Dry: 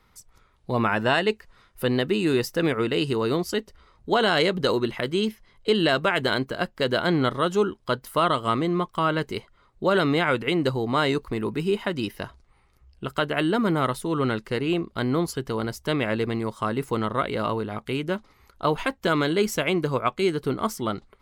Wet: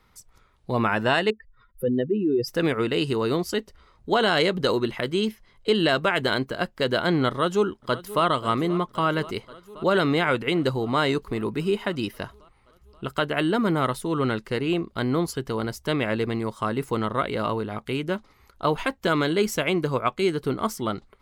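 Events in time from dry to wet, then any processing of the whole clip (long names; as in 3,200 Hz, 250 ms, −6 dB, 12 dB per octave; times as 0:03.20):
0:01.30–0:02.48: expanding power law on the bin magnitudes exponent 2.3
0:07.29–0:08.24: delay throw 530 ms, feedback 75%, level −16.5 dB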